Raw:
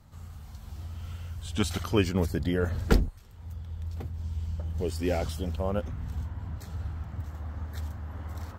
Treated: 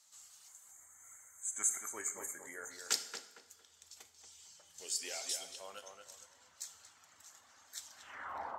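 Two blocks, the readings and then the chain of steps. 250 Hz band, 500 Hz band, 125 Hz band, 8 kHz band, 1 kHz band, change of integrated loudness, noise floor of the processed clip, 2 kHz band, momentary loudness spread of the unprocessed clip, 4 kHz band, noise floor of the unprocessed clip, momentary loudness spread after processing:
-30.0 dB, -20.5 dB, under -40 dB, +9.5 dB, -8.0 dB, -7.5 dB, -66 dBFS, -7.5 dB, 15 LU, -3.0 dB, -46 dBFS, 22 LU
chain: band-pass sweep 7000 Hz -> 820 Hz, 7.85–8.4; reverb removal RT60 0.97 s; spectral gain 0.48–2.71, 2300–6200 Hz -29 dB; HPF 460 Hz 6 dB/oct; on a send: tape echo 0.23 s, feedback 34%, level -4.5 dB, low-pass 2100 Hz; on the sum: two-slope reverb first 0.68 s, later 2.5 s, DRR 8 dB; gain +12 dB

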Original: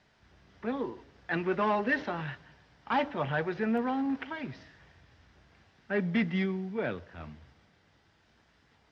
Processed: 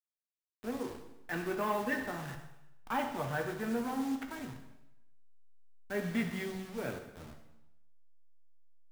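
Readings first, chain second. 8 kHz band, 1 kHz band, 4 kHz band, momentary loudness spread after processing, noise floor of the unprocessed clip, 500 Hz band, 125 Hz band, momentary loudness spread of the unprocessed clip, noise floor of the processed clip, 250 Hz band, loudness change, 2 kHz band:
n/a, -4.5 dB, -3.5 dB, 14 LU, -67 dBFS, -5.0 dB, -5.5 dB, 15 LU, under -85 dBFS, -5.0 dB, -5.0 dB, -5.5 dB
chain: level-crossing sampler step -37 dBFS; plate-style reverb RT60 0.91 s, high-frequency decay 0.95×, DRR 3.5 dB; gain -6 dB

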